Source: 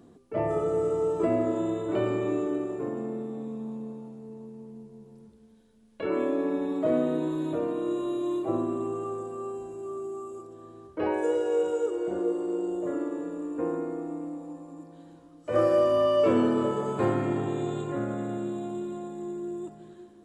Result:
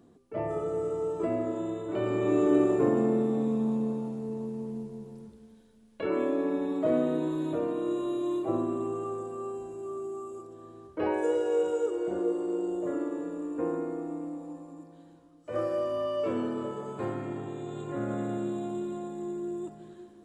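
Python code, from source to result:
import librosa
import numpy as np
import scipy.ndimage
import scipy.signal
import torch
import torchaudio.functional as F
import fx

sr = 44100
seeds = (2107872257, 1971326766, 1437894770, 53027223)

y = fx.gain(x, sr, db=fx.line((1.94, -4.5), (2.6, 8.0), (4.76, 8.0), (6.13, -1.0), (14.57, -1.0), (15.68, -8.0), (17.65, -8.0), (18.14, 0.0)))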